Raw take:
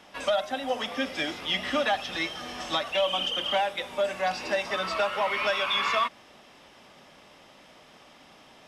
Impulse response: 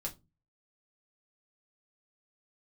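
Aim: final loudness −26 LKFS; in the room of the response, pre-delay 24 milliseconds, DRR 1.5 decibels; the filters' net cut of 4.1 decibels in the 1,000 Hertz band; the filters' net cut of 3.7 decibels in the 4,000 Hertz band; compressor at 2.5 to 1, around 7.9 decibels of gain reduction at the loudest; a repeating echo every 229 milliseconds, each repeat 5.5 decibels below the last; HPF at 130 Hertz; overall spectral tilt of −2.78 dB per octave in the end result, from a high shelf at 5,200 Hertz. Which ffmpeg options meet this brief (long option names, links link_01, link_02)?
-filter_complex "[0:a]highpass=130,equalizer=frequency=1000:width_type=o:gain=-5.5,equalizer=frequency=4000:width_type=o:gain=-7,highshelf=frequency=5200:gain=6,acompressor=threshold=-36dB:ratio=2.5,aecho=1:1:229|458|687|916|1145|1374|1603:0.531|0.281|0.149|0.079|0.0419|0.0222|0.0118,asplit=2[link_01][link_02];[1:a]atrim=start_sample=2205,adelay=24[link_03];[link_02][link_03]afir=irnorm=-1:irlink=0,volume=-1.5dB[link_04];[link_01][link_04]amix=inputs=2:normalize=0,volume=7dB"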